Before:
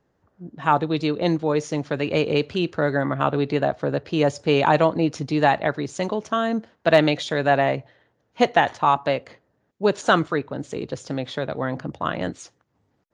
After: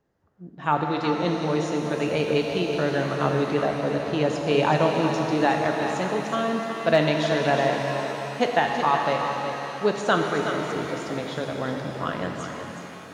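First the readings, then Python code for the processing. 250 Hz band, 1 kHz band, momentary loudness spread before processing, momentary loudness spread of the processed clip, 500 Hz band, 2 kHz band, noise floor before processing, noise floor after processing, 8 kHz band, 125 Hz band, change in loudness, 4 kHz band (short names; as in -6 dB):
-1.5 dB, -2.0 dB, 10 LU, 9 LU, -1.5 dB, -1.5 dB, -70 dBFS, -41 dBFS, 0.0 dB, -1.5 dB, -2.0 dB, -1.0 dB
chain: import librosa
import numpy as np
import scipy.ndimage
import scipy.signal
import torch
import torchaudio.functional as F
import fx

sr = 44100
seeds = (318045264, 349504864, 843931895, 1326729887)

y = x + 10.0 ** (-9.0 / 20.0) * np.pad(x, (int(370 * sr / 1000.0), 0))[:len(x)]
y = fx.rev_shimmer(y, sr, seeds[0], rt60_s=3.7, semitones=7, shimmer_db=-8, drr_db=2.5)
y = y * librosa.db_to_amplitude(-4.5)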